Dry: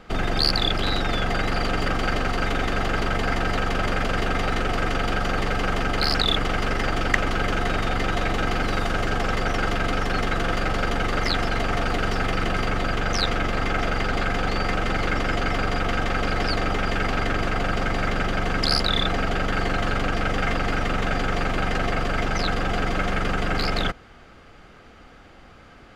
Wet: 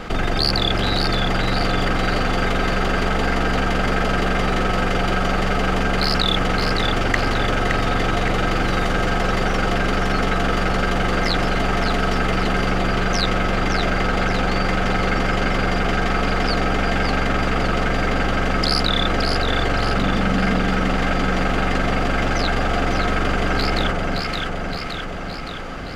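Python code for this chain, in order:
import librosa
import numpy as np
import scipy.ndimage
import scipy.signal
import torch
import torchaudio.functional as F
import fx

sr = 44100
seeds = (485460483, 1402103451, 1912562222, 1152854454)

p1 = fx.peak_eq(x, sr, hz=200.0, db=10.0, octaves=0.6, at=(19.96, 20.6))
p2 = p1 + fx.echo_alternate(p1, sr, ms=284, hz=1100.0, feedback_pct=67, wet_db=-3.0, dry=0)
y = fx.env_flatten(p2, sr, amount_pct=50)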